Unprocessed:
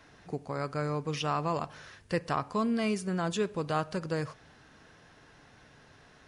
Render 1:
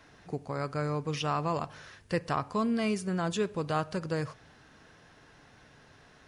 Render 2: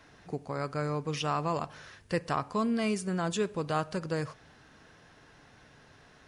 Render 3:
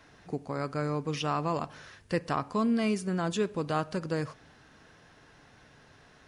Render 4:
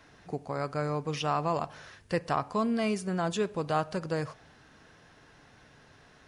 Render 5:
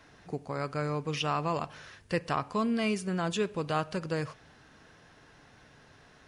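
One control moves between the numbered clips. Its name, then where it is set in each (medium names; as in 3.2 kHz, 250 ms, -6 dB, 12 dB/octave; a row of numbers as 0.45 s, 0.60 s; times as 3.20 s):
dynamic bell, frequency: 100 Hz, 8.2 kHz, 270 Hz, 720 Hz, 2.7 kHz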